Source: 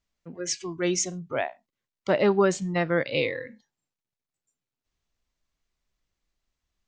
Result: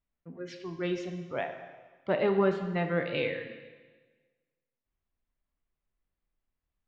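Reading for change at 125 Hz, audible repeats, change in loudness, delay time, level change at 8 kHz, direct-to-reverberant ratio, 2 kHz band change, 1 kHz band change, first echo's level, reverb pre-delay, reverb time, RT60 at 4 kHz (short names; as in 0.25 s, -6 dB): -3.5 dB, none, -5.0 dB, none, under -25 dB, 5.5 dB, -5.5 dB, -5.0 dB, none, 6 ms, 1.4 s, 1.3 s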